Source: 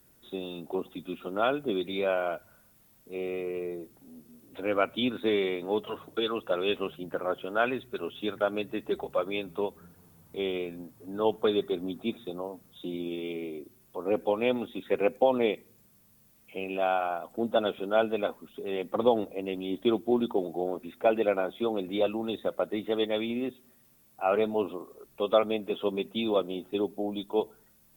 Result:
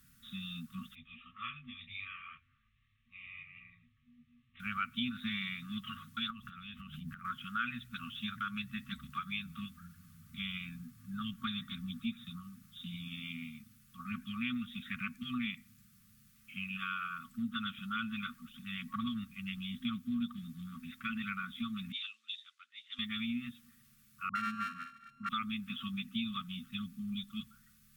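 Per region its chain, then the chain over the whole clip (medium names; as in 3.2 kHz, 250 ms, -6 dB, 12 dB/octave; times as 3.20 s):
0.95–4.60 s: steep low-pass 4.5 kHz + static phaser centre 970 Hz, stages 8 + detune thickener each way 18 cents
6.30–7.25 s: compression 8:1, threshold -40 dBFS + bass shelf 250 Hz +9.5 dB
21.92–22.99 s: Butterworth band-pass 4.5 kHz, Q 0.97 + three bands expanded up and down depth 100%
24.29–25.29 s: sorted samples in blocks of 32 samples + three-band isolator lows -13 dB, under 160 Hz, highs -19 dB, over 2.3 kHz + phase dispersion highs, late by 64 ms, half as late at 740 Hz
whole clip: FFT band-reject 250–1100 Hz; compression 2:1, threshold -38 dBFS; treble shelf 11 kHz -8 dB; trim +1.5 dB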